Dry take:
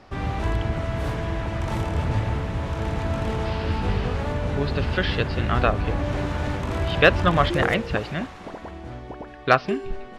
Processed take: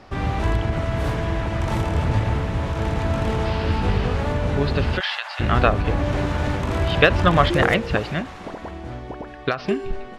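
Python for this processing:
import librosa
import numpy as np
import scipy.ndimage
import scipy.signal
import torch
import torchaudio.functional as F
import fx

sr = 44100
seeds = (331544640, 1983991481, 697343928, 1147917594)

y = fx.steep_highpass(x, sr, hz=700.0, slope=48, at=(4.99, 5.39), fade=0.02)
y = fx.end_taper(y, sr, db_per_s=160.0)
y = F.gain(torch.from_numpy(y), 3.5).numpy()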